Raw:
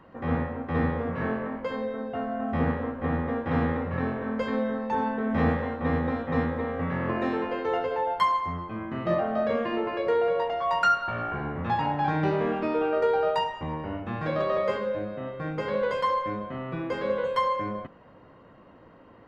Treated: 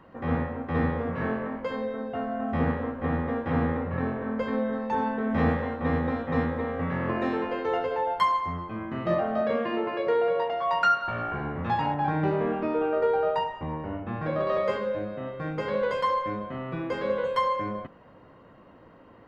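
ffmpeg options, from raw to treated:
-filter_complex "[0:a]asettb=1/sr,asplit=3[a][b][c];[a]atrim=end=3.514[d];[b]atrim=start=3.51:end=4.73,asetpts=PTS-STARTPTS,afade=t=in:d=0.004:c=qsin,afade=t=out:st=1.216:d=0.004:c=qsin,highshelf=f=3.3k:g=-8[e];[c]atrim=start=4.726[f];[d][e]acrossfade=d=0.004:c1=hsin:c2=qsin[g];[g][f]acrossfade=d=0.004:c1=qsin:c2=hsin,asettb=1/sr,asplit=3[h][i][j];[h]atrim=end=9.414[k];[i]atrim=start=9.41:end=11.04,asetpts=PTS-STARTPTS,afade=t=in:d=0.004:c=qsin,afade=t=out:st=1.626:d=0.004:c=qsin,highpass=110,lowpass=5.5k[l];[j]atrim=start=11.036[m];[k][l]acrossfade=d=0.004:c1=hsin:c2=qsin[n];[n][m]acrossfade=d=0.004:c1=qsin:c2=hsin,asettb=1/sr,asplit=3[o][p][q];[o]atrim=end=11.944[r];[p]atrim=start=11.94:end=14.47,asetpts=PTS-STARTPTS,afade=t=in:d=0.004:c=qsin,afade=t=out:st=2.526:d=0.004:c=qsin,lowpass=f=1.9k:p=1[s];[q]atrim=start=14.466[t];[r][s]acrossfade=d=0.004:c1=hsin:c2=qsin[u];[u][t]acrossfade=d=0.004:c1=qsin:c2=hsin"

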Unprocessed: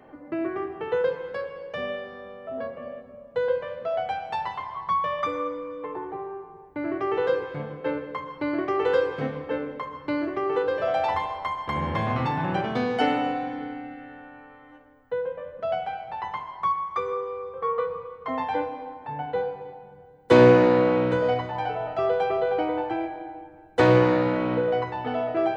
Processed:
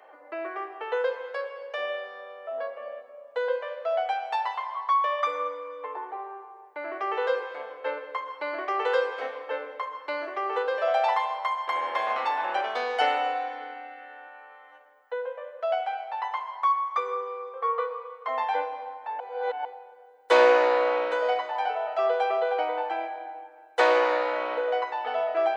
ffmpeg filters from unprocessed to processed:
-filter_complex "[0:a]asettb=1/sr,asplit=3[a][b][c];[a]atrim=end=14.274[d];[b]atrim=start=14.27:end=16.25,asetpts=PTS-STARTPTS,afade=t=in:d=0.004:c=qsin,afade=t=out:st=1.976:d=0.004:c=qsin,highpass=330[e];[c]atrim=start=16.246[f];[d][e]acrossfade=d=0.004:c1=hsin:c2=qsin[g];[g][f]acrossfade=d=0.004:c1=qsin:c2=hsin,asplit=3[h][i][j];[h]atrim=end=19.202[k];[i]atrim=start=19.198:end=19.652,asetpts=PTS-STARTPTS,areverse[l];[j]atrim=start=19.648[m];[k][l]acrossfade=d=0.004:c1=hsin:c2=hsin[n];[n][m]acrossfade=d=0.004:c1=hsin:c2=hsin,highpass=f=540:w=0.5412,highpass=f=540:w=1.3066,volume=1.5dB"

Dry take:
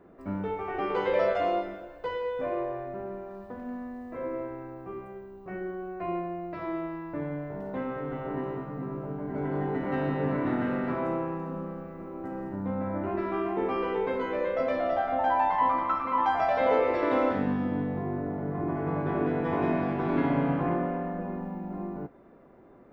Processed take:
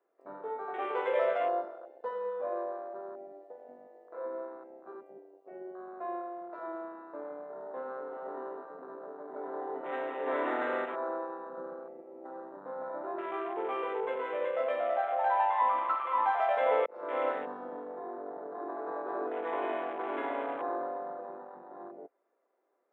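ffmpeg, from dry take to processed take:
-filter_complex "[0:a]asplit=3[a][b][c];[a]afade=t=out:st=10.26:d=0.02[d];[b]acontrast=30,afade=t=in:st=10.26:d=0.02,afade=t=out:st=10.84:d=0.02[e];[c]afade=t=in:st=10.84:d=0.02[f];[d][e][f]amix=inputs=3:normalize=0,asettb=1/sr,asplit=3[g][h][i];[g]atrim=end=11.574[j];[h]atrim=start=11.57:end=12.01,asetpts=PTS-STARTPTS,afade=t=in:d=0.004:c=qsin,afade=t=out:st=0.436:d=0.004:c=qsin,lowshelf=f=440:g=8[k];[i]atrim=start=12.006[l];[j][k]acrossfade=d=0.004:c1=hsin:c2=qsin[m];[m][l]acrossfade=d=0.004:c1=qsin:c2=hsin,asplit=2[n][o];[n]atrim=end=16.86,asetpts=PTS-STARTPTS,afade=t=out:st=16.856:d=0.004:c=hsin[p];[o]atrim=start=16.86,asetpts=PTS-STARTPTS,afade=t=in:d=0.43[q];[p][q]concat=n=2:v=0:a=1,highpass=f=420:w=0.5412,highpass=f=420:w=1.3066,afwtdn=0.0126,volume=-2.5dB"

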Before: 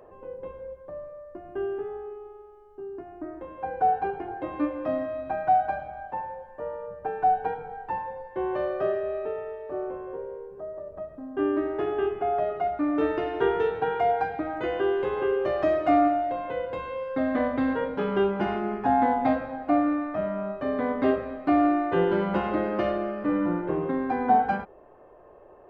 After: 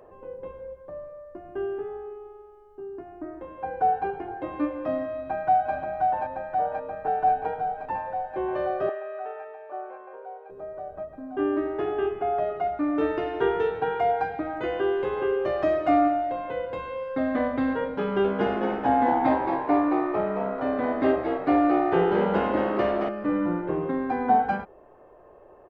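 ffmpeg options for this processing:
-filter_complex "[0:a]asplit=2[a][b];[b]afade=t=in:st=5.12:d=0.01,afade=t=out:st=5.73:d=0.01,aecho=0:1:530|1060|1590|2120|2650|3180|3710|4240|4770|5300|5830|6360:0.707946|0.566357|0.453085|0.362468|0.289975|0.23198|0.185584|0.148467|0.118774|0.0950189|0.0760151|0.0608121[c];[a][c]amix=inputs=2:normalize=0,asettb=1/sr,asplit=3[d][e][f];[d]atrim=end=8.894[g];[e]atrim=start=8.89:end=10.5,asetpts=PTS-STARTPTS,afade=t=in:d=0.004:c=qsin,afade=t=out:st=1.606:d=0.004:c=qsin,highpass=720,lowpass=2.9k[h];[f]atrim=start=10.496[i];[g][h]acrossfade=d=0.004:c1=hsin:c2=qsin[j];[j][i]acrossfade=d=0.004:c1=qsin:c2=hsin,asettb=1/sr,asplit=3[k][l][m];[k]atrim=end=18.024[n];[l]atrim=start=18.02:end=23.09,asetpts=PTS-STARTPTS,afade=t=in:d=0.004:c=qsin,afade=t=out:st=5.066:d=0.004:c=qsin,asplit=9[o][p][q][r][s][t][u][v][w];[p]adelay=222,afreqshift=66,volume=-6dB[x];[q]adelay=444,afreqshift=132,volume=-10.4dB[y];[r]adelay=666,afreqshift=198,volume=-14.9dB[z];[s]adelay=888,afreqshift=264,volume=-19.3dB[aa];[t]adelay=1110,afreqshift=330,volume=-23.7dB[ab];[u]adelay=1332,afreqshift=396,volume=-28.2dB[ac];[v]adelay=1554,afreqshift=462,volume=-32.6dB[ad];[w]adelay=1776,afreqshift=528,volume=-37.1dB[ae];[o][x][y][z][aa][ab][ac][ad][ae]amix=inputs=9:normalize=0,atrim=end_sample=223587[af];[m]atrim=start=23.086[ag];[n][af]acrossfade=d=0.004:c1=hsin:c2=qsin[ah];[ah][ag]acrossfade=d=0.004:c1=qsin:c2=hsin"

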